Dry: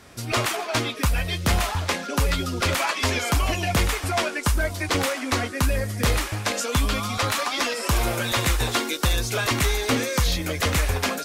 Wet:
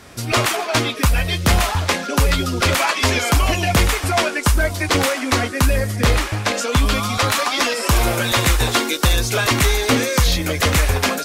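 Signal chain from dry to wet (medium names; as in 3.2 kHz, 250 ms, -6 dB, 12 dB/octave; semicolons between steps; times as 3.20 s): 5.96–6.86 s: treble shelf 7.7 kHz -8 dB; trim +6 dB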